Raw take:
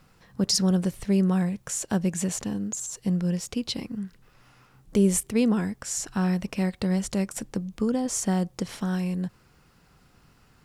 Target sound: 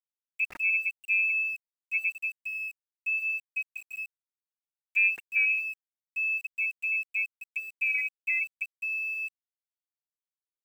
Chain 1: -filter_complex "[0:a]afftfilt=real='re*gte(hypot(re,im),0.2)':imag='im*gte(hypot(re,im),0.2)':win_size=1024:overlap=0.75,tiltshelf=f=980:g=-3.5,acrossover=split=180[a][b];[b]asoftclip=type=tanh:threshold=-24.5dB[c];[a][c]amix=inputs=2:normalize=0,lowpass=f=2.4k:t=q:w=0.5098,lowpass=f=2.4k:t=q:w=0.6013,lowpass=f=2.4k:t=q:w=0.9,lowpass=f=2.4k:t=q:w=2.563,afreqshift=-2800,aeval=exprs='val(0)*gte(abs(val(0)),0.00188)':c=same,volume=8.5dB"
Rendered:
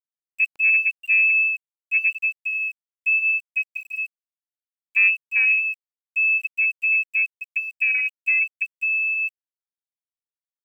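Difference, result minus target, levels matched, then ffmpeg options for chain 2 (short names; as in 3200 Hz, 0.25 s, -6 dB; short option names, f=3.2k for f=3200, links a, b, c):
1000 Hz band -4.5 dB
-filter_complex "[0:a]afftfilt=real='re*gte(hypot(re,im),0.2)':imag='im*gte(hypot(re,im),0.2)':win_size=1024:overlap=0.75,tiltshelf=f=980:g=-14.5,acrossover=split=180[a][b];[b]asoftclip=type=tanh:threshold=-24.5dB[c];[a][c]amix=inputs=2:normalize=0,lowpass=f=2.4k:t=q:w=0.5098,lowpass=f=2.4k:t=q:w=0.6013,lowpass=f=2.4k:t=q:w=0.9,lowpass=f=2.4k:t=q:w=2.563,afreqshift=-2800,aeval=exprs='val(0)*gte(abs(val(0)),0.00188)':c=same,volume=8.5dB"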